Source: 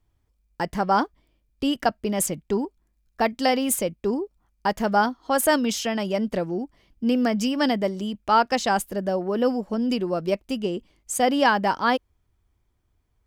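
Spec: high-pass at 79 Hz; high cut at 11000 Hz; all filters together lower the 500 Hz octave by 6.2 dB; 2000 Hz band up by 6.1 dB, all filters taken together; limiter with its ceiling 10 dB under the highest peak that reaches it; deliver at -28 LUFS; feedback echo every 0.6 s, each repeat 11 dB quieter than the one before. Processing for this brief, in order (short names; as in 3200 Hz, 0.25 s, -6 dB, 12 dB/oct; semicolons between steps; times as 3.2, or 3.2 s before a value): HPF 79 Hz; LPF 11000 Hz; bell 500 Hz -8.5 dB; bell 2000 Hz +8.5 dB; limiter -13.5 dBFS; feedback echo 0.6 s, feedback 28%, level -11 dB; gain -1.5 dB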